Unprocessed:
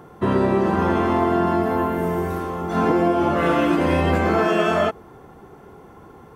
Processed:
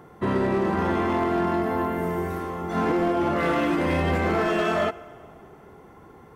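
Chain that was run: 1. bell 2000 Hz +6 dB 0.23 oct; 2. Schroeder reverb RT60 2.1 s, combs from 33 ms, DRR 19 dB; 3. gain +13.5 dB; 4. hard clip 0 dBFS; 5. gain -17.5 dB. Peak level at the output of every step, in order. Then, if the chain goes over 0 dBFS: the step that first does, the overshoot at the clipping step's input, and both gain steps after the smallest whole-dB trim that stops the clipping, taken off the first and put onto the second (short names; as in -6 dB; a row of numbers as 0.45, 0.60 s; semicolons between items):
-6.0, -6.0, +7.5, 0.0, -17.5 dBFS; step 3, 7.5 dB; step 3 +5.5 dB, step 5 -9.5 dB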